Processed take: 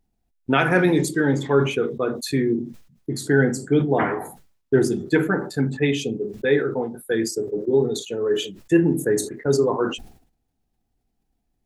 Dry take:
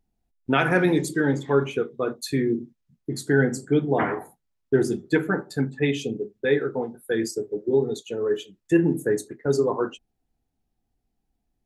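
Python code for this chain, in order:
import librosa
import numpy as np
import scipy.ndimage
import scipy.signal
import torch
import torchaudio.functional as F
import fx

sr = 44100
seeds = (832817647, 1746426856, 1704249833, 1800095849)

y = fx.sustainer(x, sr, db_per_s=100.0)
y = y * 10.0 ** (2.0 / 20.0)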